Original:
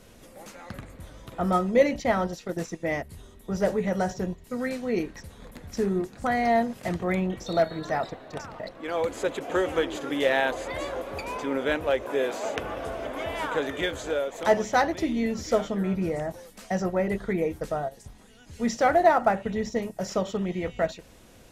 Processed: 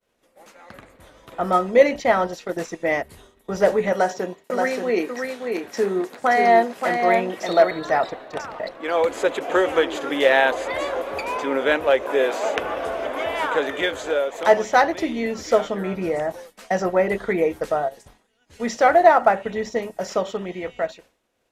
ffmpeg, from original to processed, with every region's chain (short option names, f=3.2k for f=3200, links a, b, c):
-filter_complex "[0:a]asettb=1/sr,asplit=3[a][b][c];[a]atrim=end=3.924[d];[b]atrim=start=3.92:end=7.71,asetpts=PTS-STARTPTS,afade=t=in:d=0.004:c=qsin,afade=t=out:st=3.786:d=0.004:c=qsin,highpass=230,aecho=1:1:578:0.596,atrim=end_sample=167139[e];[c]atrim=start=7.706[f];[d][e]acrossfade=d=0.004:c1=hsin:c2=qsin[g];[g][f]acrossfade=d=0.004:c1=qsin:c2=hsin,agate=range=-33dB:threshold=-41dB:ratio=3:detection=peak,bass=f=250:g=-13,treble=f=4k:g=-5,dynaudnorm=f=110:g=21:m=9dB"